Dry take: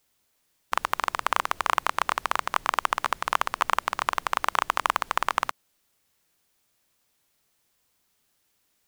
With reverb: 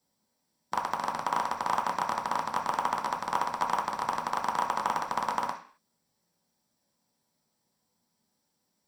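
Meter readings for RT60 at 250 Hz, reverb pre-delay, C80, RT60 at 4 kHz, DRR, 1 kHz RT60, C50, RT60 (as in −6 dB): 0.55 s, 3 ms, 14.0 dB, can't be measured, −1.0 dB, 0.45 s, 9.0 dB, 0.45 s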